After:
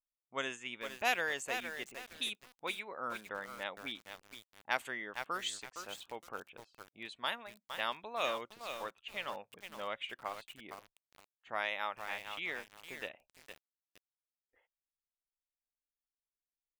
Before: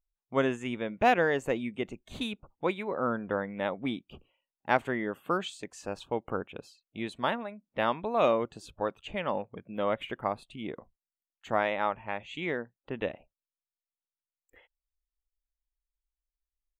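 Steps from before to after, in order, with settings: pre-emphasis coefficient 0.97; low-pass opened by the level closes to 900 Hz, open at -40.5 dBFS; lo-fi delay 0.462 s, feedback 35%, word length 9-bit, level -7 dB; gain +8 dB

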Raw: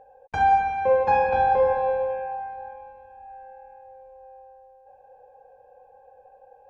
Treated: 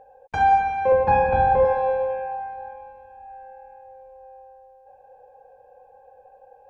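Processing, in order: 0.92–1.65 tone controls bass +9 dB, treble -12 dB; gain +1.5 dB

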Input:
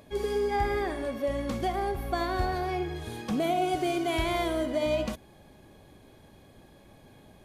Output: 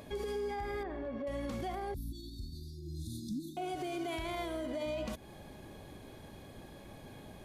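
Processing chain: compressor 4:1, threshold -37 dBFS, peak gain reduction 12.5 dB; limiter -33.5 dBFS, peak gain reduction 8 dB; 0.83–1.27 tape spacing loss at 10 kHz 33 dB; 1.94–3.57 brick-wall FIR band-stop 340–3400 Hz; gain +3.5 dB

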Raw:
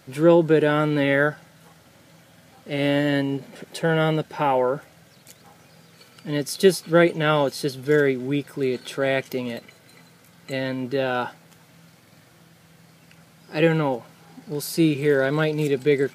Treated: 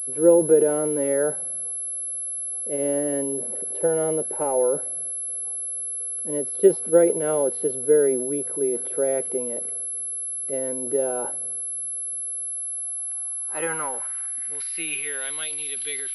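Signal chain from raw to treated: transient shaper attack +3 dB, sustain +8 dB; band-pass sweep 470 Hz -> 3500 Hz, 12.23–15.45; pulse-width modulation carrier 11000 Hz; gain +1.5 dB

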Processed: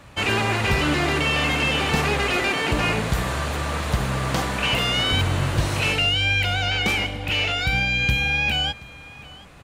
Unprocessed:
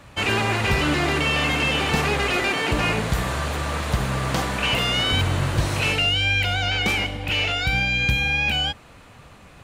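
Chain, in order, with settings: echo 0.727 s -21.5 dB

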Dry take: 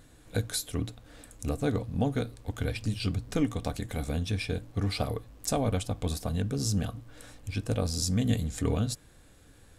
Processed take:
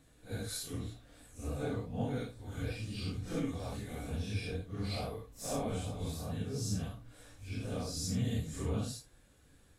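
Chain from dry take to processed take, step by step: phase scrambler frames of 0.2 s; gain -7 dB

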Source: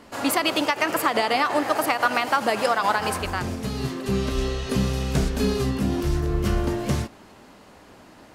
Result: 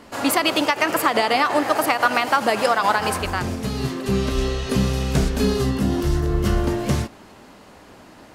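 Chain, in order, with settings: 5.43–6.64 notch 2400 Hz, Q 13; gain +3 dB

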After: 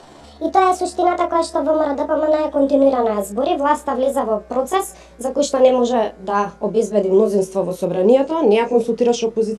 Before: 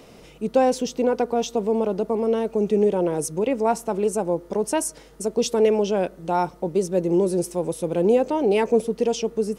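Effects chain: gliding pitch shift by +7 st ending unshifted; Bessel low-pass 7300 Hz, order 4; doubler 29 ms -7.5 dB; gain +5.5 dB

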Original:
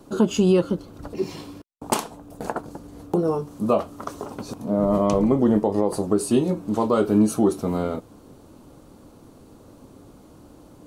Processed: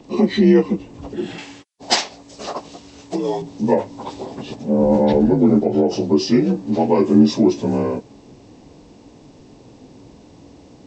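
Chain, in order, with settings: inharmonic rescaling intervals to 84%; 1.38–3.42 tilt shelf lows -8 dB, about 810 Hz; gain +6 dB

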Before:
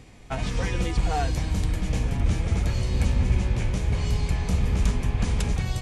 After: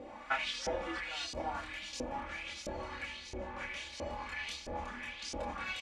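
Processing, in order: comb 3.5 ms, depth 79%; compressor 6:1, threshold -31 dBFS, peak gain reduction 16 dB; chorus voices 6, 0.37 Hz, delay 27 ms, depth 3 ms; speakerphone echo 0.34 s, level -7 dB; LFO band-pass saw up 1.5 Hz 490–5900 Hz; gain +15.5 dB

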